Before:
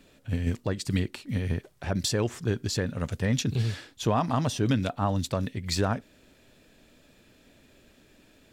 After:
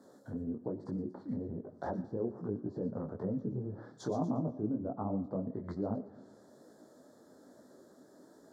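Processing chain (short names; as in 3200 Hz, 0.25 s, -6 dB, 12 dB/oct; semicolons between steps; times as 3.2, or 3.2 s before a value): treble ducked by the level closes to 410 Hz, closed at -25 dBFS; Butterworth band-stop 2600 Hz, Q 0.71; on a send: thin delay 0.118 s, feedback 34%, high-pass 4300 Hz, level -3.5 dB; on the sum: limiter -25.5 dBFS, peak gain reduction 10 dB; HPF 260 Hz 12 dB/oct; high shelf 3000 Hz -10.5 dB; digital reverb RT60 1.2 s, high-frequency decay 0.5×, pre-delay 45 ms, DRR 16 dB; detuned doubles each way 41 cents; gain +8 dB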